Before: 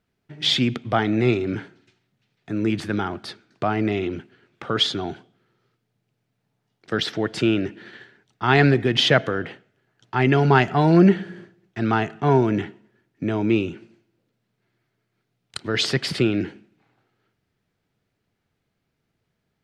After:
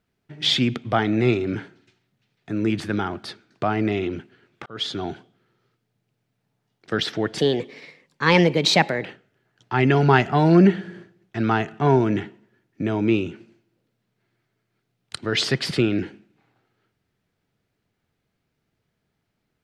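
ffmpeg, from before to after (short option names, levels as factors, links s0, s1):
-filter_complex "[0:a]asplit=4[s0][s1][s2][s3];[s0]atrim=end=4.66,asetpts=PTS-STARTPTS,afade=t=out:st=4.656:d=0.004:c=hsin[s4];[s1]atrim=start=4.66:end=7.384,asetpts=PTS-STARTPTS,afade=t=in:d=0.38[s5];[s2]atrim=start=7.38:end=9.47,asetpts=PTS-STARTPTS,asetrate=55125,aresample=44100,atrim=end_sample=73735,asetpts=PTS-STARTPTS[s6];[s3]atrim=start=9.466[s7];[s4][s5]concat=n=2:v=0:a=1[s8];[s8][s6]acrossfade=d=0.004:c1=hsin:c2=hsin[s9];[s9][s7]acrossfade=d=0.004:c1=hsin:c2=hsin"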